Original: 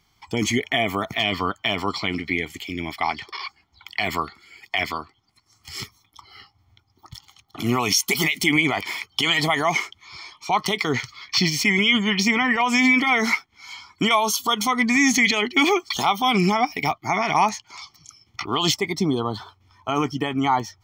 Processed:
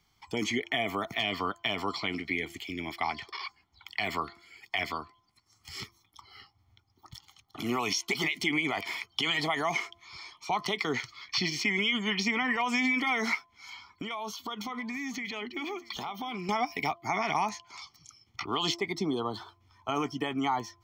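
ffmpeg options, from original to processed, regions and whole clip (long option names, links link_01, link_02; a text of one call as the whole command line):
ffmpeg -i in.wav -filter_complex "[0:a]asettb=1/sr,asplit=3[link_01][link_02][link_03];[link_01]atrim=end=13.704[link_04];[link_02]atrim=start=13.7:end=16.49,asetpts=PTS-STARTPTS,afade=type=in:duration=0.004:curve=qsin,afade=type=out:start_time=2.786:duration=0.004:curve=qsin,equalizer=frequency=9200:width_type=o:width=1.2:gain=-11.5,acompressor=threshold=-27dB:ratio=6:attack=3.2:release=140:knee=1:detection=peak,aecho=1:1:640:0.0891,atrim=end_sample=123039[link_05];[link_03]atrim=start=16.486[link_06];[link_04][link_05]acrossfade=duration=0.004:curve1=hsin:curve2=qsin[link_07];[link_07][link_06]acrossfade=duration=0.004:curve1=qsin:curve2=hsin,bandreject=frequency=342:width_type=h:width=4,bandreject=frequency=684:width_type=h:width=4,bandreject=frequency=1026:width_type=h:width=4,acrossover=split=210|5800[link_08][link_09][link_10];[link_08]acompressor=threshold=-39dB:ratio=4[link_11];[link_09]acompressor=threshold=-19dB:ratio=4[link_12];[link_10]acompressor=threshold=-46dB:ratio=4[link_13];[link_11][link_12][link_13]amix=inputs=3:normalize=0,volume=-6dB" out.wav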